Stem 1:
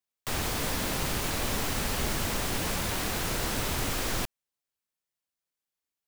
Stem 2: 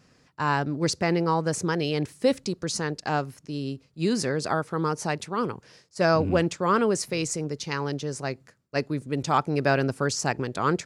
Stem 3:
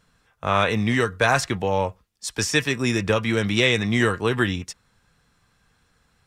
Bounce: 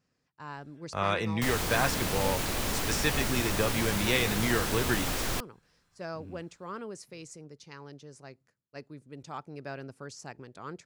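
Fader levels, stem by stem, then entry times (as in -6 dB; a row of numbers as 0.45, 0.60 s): -1.0, -17.5, -8.5 dB; 1.15, 0.00, 0.50 s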